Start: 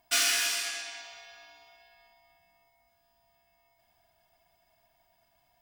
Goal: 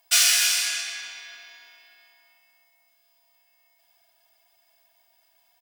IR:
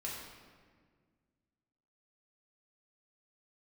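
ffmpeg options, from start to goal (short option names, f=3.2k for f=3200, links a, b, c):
-filter_complex "[0:a]highpass=f=760:p=1,highshelf=f=2k:g=9.5,asplit=2[a][b];[b]adelay=293,lowpass=f=1.8k:p=1,volume=-6.5dB,asplit=2[c][d];[d]adelay=293,lowpass=f=1.8k:p=1,volume=0.55,asplit=2[e][f];[f]adelay=293,lowpass=f=1.8k:p=1,volume=0.55,asplit=2[g][h];[h]adelay=293,lowpass=f=1.8k:p=1,volume=0.55,asplit=2[i][j];[j]adelay=293,lowpass=f=1.8k:p=1,volume=0.55,asplit=2[k][l];[l]adelay=293,lowpass=f=1.8k:p=1,volume=0.55,asplit=2[m][n];[n]adelay=293,lowpass=f=1.8k:p=1,volume=0.55[o];[c][e][g][i][k][m][o]amix=inputs=7:normalize=0[p];[a][p]amix=inputs=2:normalize=0"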